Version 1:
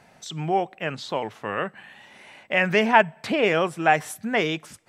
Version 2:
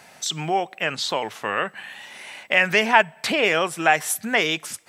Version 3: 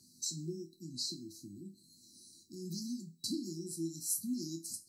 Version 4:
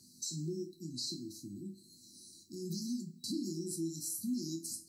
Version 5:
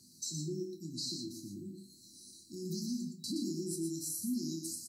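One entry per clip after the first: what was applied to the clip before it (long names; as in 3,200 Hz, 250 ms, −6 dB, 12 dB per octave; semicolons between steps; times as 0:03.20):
in parallel at +2.5 dB: downward compressor, threshold −27 dBFS, peak gain reduction 16 dB; on the sum: spectral tilt +2.5 dB per octave; level −1.5 dB
brick-wall band-stop 370–3,900 Hz; resonators tuned to a chord E2 minor, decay 0.26 s; level +2.5 dB
brickwall limiter −32 dBFS, peak gain reduction 10 dB; on a send at −15 dB: convolution reverb RT60 0.80 s, pre-delay 18 ms; on the sum: level +2.5 dB
single-tap delay 119 ms −6 dB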